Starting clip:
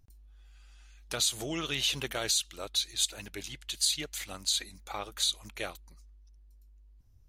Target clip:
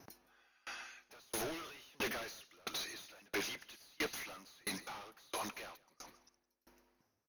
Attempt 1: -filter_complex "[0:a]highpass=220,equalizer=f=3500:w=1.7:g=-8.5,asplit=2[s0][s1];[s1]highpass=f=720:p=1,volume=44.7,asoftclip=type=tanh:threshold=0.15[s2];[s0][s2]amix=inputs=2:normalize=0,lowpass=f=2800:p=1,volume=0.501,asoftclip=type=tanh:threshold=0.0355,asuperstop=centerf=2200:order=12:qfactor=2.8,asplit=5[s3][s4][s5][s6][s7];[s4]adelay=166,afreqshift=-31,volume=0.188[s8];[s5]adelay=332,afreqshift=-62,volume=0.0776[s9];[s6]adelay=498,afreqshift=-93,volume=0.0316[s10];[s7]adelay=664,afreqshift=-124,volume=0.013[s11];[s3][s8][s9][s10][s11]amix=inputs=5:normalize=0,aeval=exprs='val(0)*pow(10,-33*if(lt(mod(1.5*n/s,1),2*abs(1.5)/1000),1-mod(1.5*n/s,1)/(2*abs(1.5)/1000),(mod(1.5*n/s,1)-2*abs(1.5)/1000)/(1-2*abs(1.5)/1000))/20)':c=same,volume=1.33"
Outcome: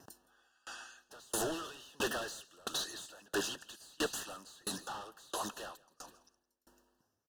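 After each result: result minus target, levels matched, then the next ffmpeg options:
saturation: distortion -5 dB; 8 kHz band +2.0 dB
-filter_complex "[0:a]highpass=220,equalizer=f=3500:w=1.7:g=-8.5,asplit=2[s0][s1];[s1]highpass=f=720:p=1,volume=44.7,asoftclip=type=tanh:threshold=0.15[s2];[s0][s2]amix=inputs=2:normalize=0,lowpass=f=2800:p=1,volume=0.501,asoftclip=type=tanh:threshold=0.0178,asuperstop=centerf=2200:order=12:qfactor=2.8,asplit=5[s3][s4][s5][s6][s7];[s4]adelay=166,afreqshift=-31,volume=0.188[s8];[s5]adelay=332,afreqshift=-62,volume=0.0776[s9];[s6]adelay=498,afreqshift=-93,volume=0.0316[s10];[s7]adelay=664,afreqshift=-124,volume=0.013[s11];[s3][s8][s9][s10][s11]amix=inputs=5:normalize=0,aeval=exprs='val(0)*pow(10,-33*if(lt(mod(1.5*n/s,1),2*abs(1.5)/1000),1-mod(1.5*n/s,1)/(2*abs(1.5)/1000),(mod(1.5*n/s,1)-2*abs(1.5)/1000)/(1-2*abs(1.5)/1000))/20)':c=same,volume=1.33"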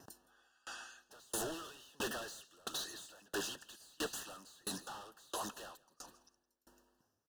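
8 kHz band +3.0 dB
-filter_complex "[0:a]highpass=220,equalizer=f=3500:w=1.7:g=-8.5,asplit=2[s0][s1];[s1]highpass=f=720:p=1,volume=44.7,asoftclip=type=tanh:threshold=0.15[s2];[s0][s2]amix=inputs=2:normalize=0,lowpass=f=2800:p=1,volume=0.501,asoftclip=type=tanh:threshold=0.0178,asuperstop=centerf=8000:order=12:qfactor=2.8,asplit=5[s3][s4][s5][s6][s7];[s4]adelay=166,afreqshift=-31,volume=0.188[s8];[s5]adelay=332,afreqshift=-62,volume=0.0776[s9];[s6]adelay=498,afreqshift=-93,volume=0.0316[s10];[s7]adelay=664,afreqshift=-124,volume=0.013[s11];[s3][s8][s9][s10][s11]amix=inputs=5:normalize=0,aeval=exprs='val(0)*pow(10,-33*if(lt(mod(1.5*n/s,1),2*abs(1.5)/1000),1-mod(1.5*n/s,1)/(2*abs(1.5)/1000),(mod(1.5*n/s,1)-2*abs(1.5)/1000)/(1-2*abs(1.5)/1000))/20)':c=same,volume=1.33"

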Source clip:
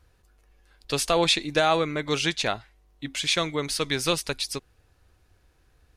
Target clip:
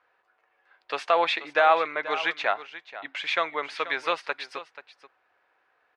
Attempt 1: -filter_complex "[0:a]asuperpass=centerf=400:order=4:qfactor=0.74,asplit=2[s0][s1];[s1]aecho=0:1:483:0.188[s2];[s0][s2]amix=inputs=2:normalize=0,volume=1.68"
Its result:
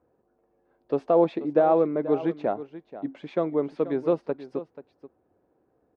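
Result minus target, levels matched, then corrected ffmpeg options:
1 kHz band -5.5 dB
-filter_complex "[0:a]asuperpass=centerf=1200:order=4:qfactor=0.74,asplit=2[s0][s1];[s1]aecho=0:1:483:0.188[s2];[s0][s2]amix=inputs=2:normalize=0,volume=1.68"

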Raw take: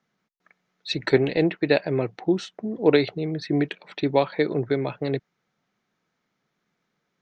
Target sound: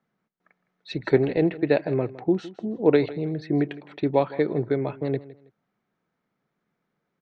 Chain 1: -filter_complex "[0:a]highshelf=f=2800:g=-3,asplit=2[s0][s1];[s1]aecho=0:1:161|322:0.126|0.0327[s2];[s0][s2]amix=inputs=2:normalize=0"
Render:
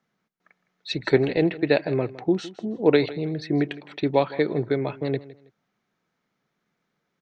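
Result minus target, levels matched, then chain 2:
4 kHz band +7.5 dB
-filter_complex "[0:a]highshelf=f=2800:g=-15,asplit=2[s0][s1];[s1]aecho=0:1:161|322:0.126|0.0327[s2];[s0][s2]amix=inputs=2:normalize=0"

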